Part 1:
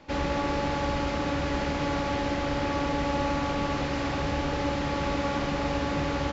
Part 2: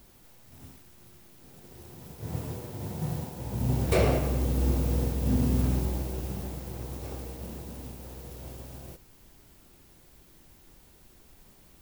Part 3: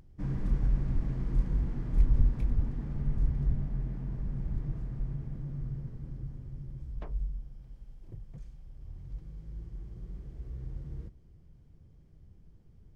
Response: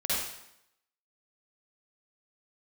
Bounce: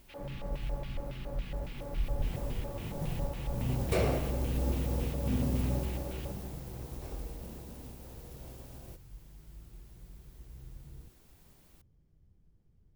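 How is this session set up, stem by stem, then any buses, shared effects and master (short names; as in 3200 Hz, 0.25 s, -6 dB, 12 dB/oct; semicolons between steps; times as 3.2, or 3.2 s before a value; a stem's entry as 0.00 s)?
-10.0 dB, 0.00 s, no send, LFO band-pass square 3.6 Hz 550–2900 Hz
-5.5 dB, 0.00 s, no send, dry
-9.0 dB, 0.00 s, no send, dry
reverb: off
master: dry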